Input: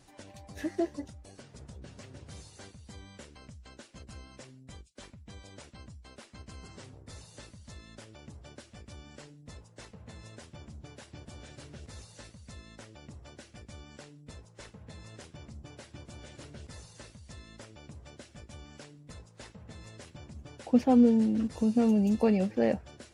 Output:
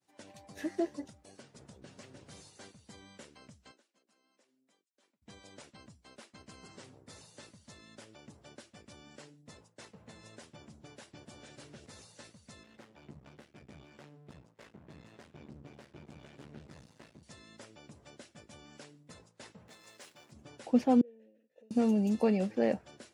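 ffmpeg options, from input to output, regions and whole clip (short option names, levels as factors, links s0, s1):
-filter_complex "[0:a]asettb=1/sr,asplit=3[s0][s1][s2];[s0]atrim=end=3.714[s3];[s1]atrim=start=3.71:end=5.22,asetpts=PTS-STARTPTS,afade=t=in:d=0.004:c=qsin,afade=t=out:st=1.506:d=0.004:c=qsin,highpass=f=240:w=0.5412,highpass=f=240:w=1.3066,acompressor=threshold=0.00158:ratio=4:attack=3.2:release=140:knee=1:detection=peak[s4];[s2]atrim=start=5.216[s5];[s3][s4]acrossfade=d=0.004:c1=hsin:c2=qsin[s6];[s6][s5]acrossfade=d=0.004:c1=qsin:c2=hsin,asettb=1/sr,asplit=3[s7][s8][s9];[s7]atrim=end=12.634[s10];[s8]atrim=start=12.63:end=17.23,asetpts=PTS-STARTPTS,afade=t=in:d=0.004:c=qsin,afade=t=out:st=4.596:d=0.004:c=qsin,bass=f=250:g=7,treble=f=4000:g=-11,asplit=2[s11][s12];[s12]adelay=14,volume=0.447[s13];[s11][s13]amix=inputs=2:normalize=0,atrim=end_sample=202860,aeval=exprs='max(val(0),0)':c=same[s14];[s9]atrim=start=17.226[s15];[s10][s14]acrossfade=d=0.004:c1=hsin:c2=qsin[s16];[s16][s15]acrossfade=d=0.004:c1=qsin:c2=hsin,asettb=1/sr,asplit=3[s17][s18][s19];[s17]atrim=end=19.684[s20];[s18]atrim=start=19.68:end=20.32,asetpts=PTS-STARTPTS,afade=t=in:d=0.004:c=qsin,afade=t=out:st=0.636:d=0.004:c=qsin,aeval=exprs='val(0)+0.5*0.00224*sgn(val(0))':c=same,highpass=f=640:p=1[s21];[s19]atrim=start=20.316[s22];[s20][s21]acrossfade=d=0.004:c1=hsin:c2=qsin[s23];[s23][s22]acrossfade=d=0.004:c1=qsin:c2=hsin,asettb=1/sr,asplit=3[s24][s25][s26];[s24]atrim=end=21.014[s27];[s25]atrim=start=21.01:end=21.71,asetpts=PTS-STARTPTS,afade=t=in:d=0.004:c=qsin,afade=t=out:st=0.696:d=0.004:c=qsin,bandreject=f=4700:w=5.1,acompressor=threshold=0.0158:ratio=5:attack=3.2:release=140:knee=1:detection=peak,asplit=3[s28][s29][s30];[s28]bandpass=f=530:t=q:w=8,volume=1[s31];[s29]bandpass=f=1840:t=q:w=8,volume=0.501[s32];[s30]bandpass=f=2480:t=q:w=8,volume=0.355[s33];[s31][s32][s33]amix=inputs=3:normalize=0[s34];[s26]atrim=start=21.706[s35];[s27][s34]acrossfade=d=0.004:c1=hsin:c2=qsin[s36];[s36][s35]acrossfade=d=0.004:c1=qsin:c2=hsin,agate=range=0.0224:threshold=0.00316:ratio=3:detection=peak,highpass=160,volume=0.794"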